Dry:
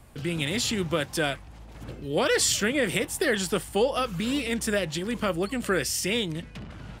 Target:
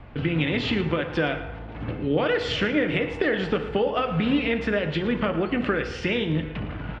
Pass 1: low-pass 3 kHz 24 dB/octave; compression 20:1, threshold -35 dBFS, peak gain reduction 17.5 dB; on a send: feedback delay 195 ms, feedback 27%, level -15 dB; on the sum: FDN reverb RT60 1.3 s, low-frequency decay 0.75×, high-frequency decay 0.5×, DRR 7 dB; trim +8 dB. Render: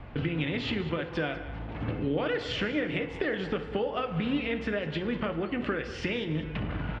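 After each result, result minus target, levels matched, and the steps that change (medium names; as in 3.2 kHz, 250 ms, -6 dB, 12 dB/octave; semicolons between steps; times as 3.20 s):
echo 82 ms late; compression: peak gain reduction +6.5 dB
change: feedback delay 113 ms, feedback 27%, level -15 dB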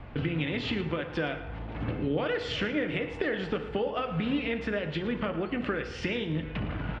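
compression: peak gain reduction +6.5 dB
change: compression 20:1, threshold -28 dBFS, peak gain reduction 10.5 dB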